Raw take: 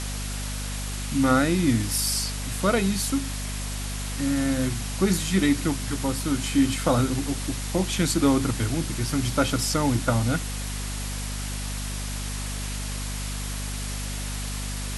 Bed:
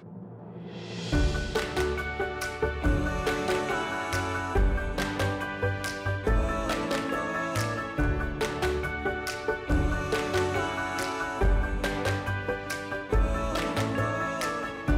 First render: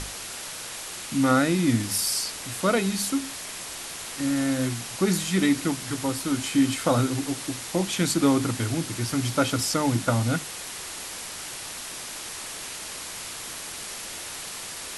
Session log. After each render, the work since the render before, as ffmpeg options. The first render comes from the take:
ffmpeg -i in.wav -af "bandreject=frequency=50:width_type=h:width=6,bandreject=frequency=100:width_type=h:width=6,bandreject=frequency=150:width_type=h:width=6,bandreject=frequency=200:width_type=h:width=6,bandreject=frequency=250:width_type=h:width=6" out.wav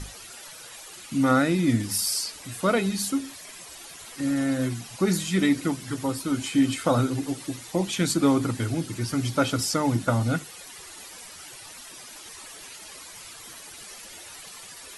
ffmpeg -i in.wav -af "afftdn=noise_reduction=12:noise_floor=-37" out.wav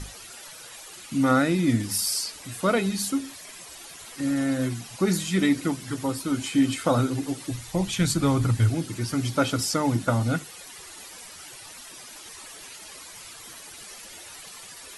ffmpeg -i in.wav -filter_complex "[0:a]asplit=3[link_01][link_02][link_03];[link_01]afade=type=out:start_time=7.5:duration=0.02[link_04];[link_02]asubboost=boost=7.5:cutoff=100,afade=type=in:start_time=7.5:duration=0.02,afade=type=out:start_time=8.69:duration=0.02[link_05];[link_03]afade=type=in:start_time=8.69:duration=0.02[link_06];[link_04][link_05][link_06]amix=inputs=3:normalize=0" out.wav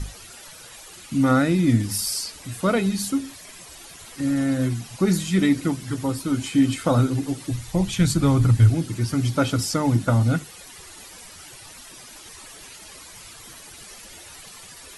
ffmpeg -i in.wav -af "lowshelf=frequency=180:gain=9" out.wav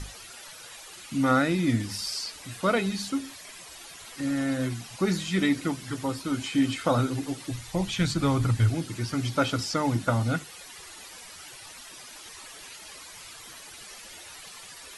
ffmpeg -i in.wav -filter_complex "[0:a]acrossover=split=5800[link_01][link_02];[link_02]acompressor=threshold=-46dB:ratio=4:attack=1:release=60[link_03];[link_01][link_03]amix=inputs=2:normalize=0,lowshelf=frequency=380:gain=-8.5" out.wav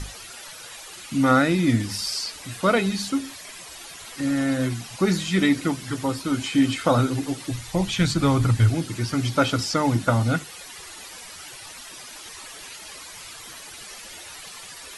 ffmpeg -i in.wav -af "volume=4.5dB" out.wav

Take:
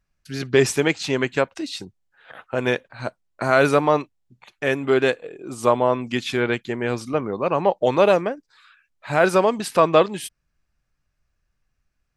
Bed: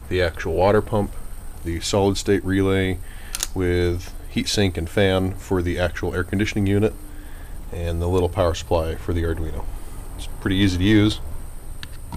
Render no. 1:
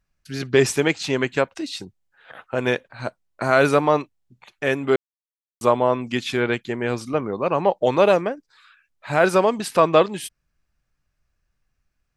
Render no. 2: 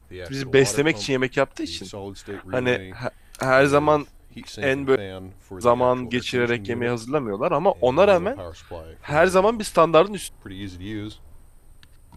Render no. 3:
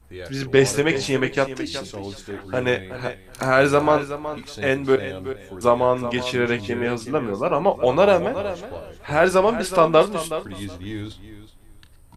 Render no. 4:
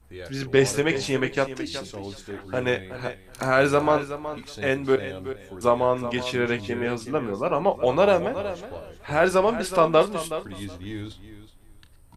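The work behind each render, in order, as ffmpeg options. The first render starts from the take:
ffmpeg -i in.wav -filter_complex "[0:a]asplit=3[link_01][link_02][link_03];[link_01]atrim=end=4.96,asetpts=PTS-STARTPTS,afade=type=out:start_time=4.956:duration=0.004:curve=hsin[link_04];[link_02]atrim=start=4.96:end=5.61,asetpts=PTS-STARTPTS,volume=0[link_05];[link_03]atrim=start=5.61,asetpts=PTS-STARTPTS,afade=type=in:duration=0.004:curve=hsin[link_06];[link_04][link_05][link_06]concat=n=3:v=0:a=1" out.wav
ffmpeg -i in.wav -i bed.wav -filter_complex "[1:a]volume=-16dB[link_01];[0:a][link_01]amix=inputs=2:normalize=0" out.wav
ffmpeg -i in.wav -filter_complex "[0:a]asplit=2[link_01][link_02];[link_02]adelay=30,volume=-12dB[link_03];[link_01][link_03]amix=inputs=2:normalize=0,aecho=1:1:371|742:0.251|0.0402" out.wav
ffmpeg -i in.wav -af "volume=-3dB" out.wav

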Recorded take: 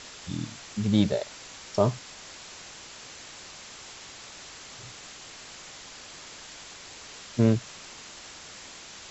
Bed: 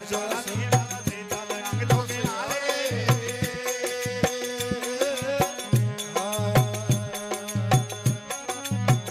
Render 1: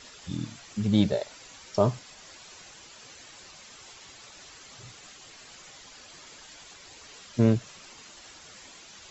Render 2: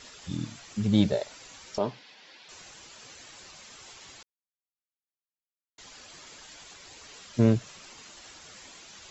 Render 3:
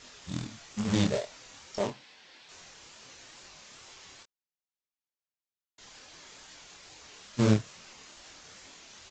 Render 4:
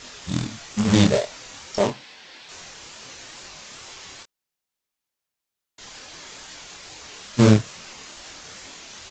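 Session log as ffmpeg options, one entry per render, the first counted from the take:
ffmpeg -i in.wav -af "afftdn=noise_reduction=9:noise_floor=-46" out.wav
ffmpeg -i in.wav -filter_complex "[0:a]asettb=1/sr,asplit=3[link_01][link_02][link_03];[link_01]atrim=end=1.784[link_04];[link_02]atrim=start=1.78:end=2.49,asetpts=PTS-STARTPTS,afade=type=in:duration=0.004:curve=qsin,afade=type=out:start_time=0.706:duration=0.004:curve=qsin,highpass=280,equalizer=frequency=380:width_type=q:width=4:gain=-4,equalizer=frequency=640:width_type=q:width=4:gain=-7,equalizer=frequency=1200:width_type=q:width=4:gain=-9,lowpass=frequency=4500:width=0.5412,lowpass=frequency=4500:width=1.3066[link_05];[link_03]atrim=start=2.486[link_06];[link_04][link_05]acrossfade=duration=0.004:curve1=hsin:curve2=qsin[link_07];[link_07][link_06]acrossfade=duration=0.004:curve1=qsin:curve2=hsin,asplit=3[link_08][link_09][link_10];[link_08]atrim=end=4.23,asetpts=PTS-STARTPTS,afade=type=out:start_time=4.226:duration=0.004:curve=hsin[link_11];[link_09]atrim=start=4.23:end=5.78,asetpts=PTS-STARTPTS,volume=0[link_12];[link_10]atrim=start=5.78,asetpts=PTS-STARTPTS,afade=type=in:duration=0.004:curve=hsin[link_13];[link_11][link_12][link_13]concat=n=3:v=0:a=1" out.wav
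ffmpeg -i in.wav -af "aresample=16000,acrusher=bits=2:mode=log:mix=0:aa=0.000001,aresample=44100,flanger=delay=22.5:depth=6.8:speed=2.3" out.wav
ffmpeg -i in.wav -af "volume=10dB,alimiter=limit=-2dB:level=0:latency=1" out.wav

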